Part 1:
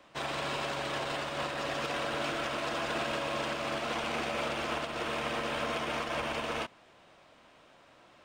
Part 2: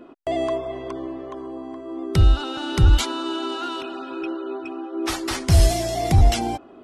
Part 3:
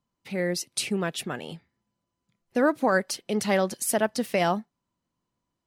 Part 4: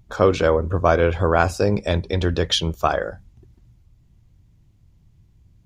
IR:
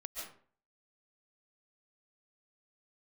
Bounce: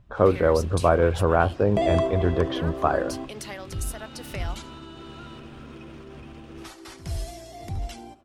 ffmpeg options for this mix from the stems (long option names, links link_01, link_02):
-filter_complex "[0:a]bandreject=frequency=2200:width=27,asubboost=boost=12:cutoff=210,volume=-16dB[link_01];[1:a]adelay=1500,volume=1dB,asplit=2[link_02][link_03];[link_03]volume=-17.5dB[link_04];[2:a]highpass=frequency=1200:poles=1,acompressor=threshold=-35dB:ratio=5,volume=0dB[link_05];[3:a]lowpass=1500,volume=-2dB,asplit=2[link_06][link_07];[link_07]apad=whole_len=367619[link_08];[link_02][link_08]sidechaingate=range=-33dB:threshold=-44dB:ratio=16:detection=peak[link_09];[link_04]aecho=0:1:72|144|216:1|0.17|0.0289[link_10];[link_01][link_09][link_05][link_06][link_10]amix=inputs=5:normalize=0"